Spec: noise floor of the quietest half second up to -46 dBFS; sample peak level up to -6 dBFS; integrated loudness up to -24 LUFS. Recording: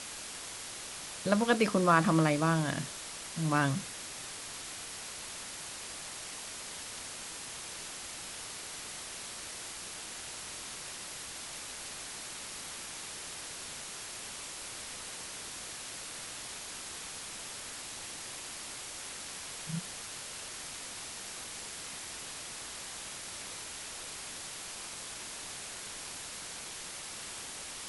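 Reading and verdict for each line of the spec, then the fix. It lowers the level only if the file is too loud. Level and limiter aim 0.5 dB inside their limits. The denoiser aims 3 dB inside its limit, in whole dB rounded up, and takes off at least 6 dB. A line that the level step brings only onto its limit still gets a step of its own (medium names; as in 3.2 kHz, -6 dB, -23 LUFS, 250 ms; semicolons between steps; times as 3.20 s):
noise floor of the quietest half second -43 dBFS: fail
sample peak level -12.0 dBFS: pass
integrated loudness -36.5 LUFS: pass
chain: noise reduction 6 dB, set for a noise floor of -43 dBFS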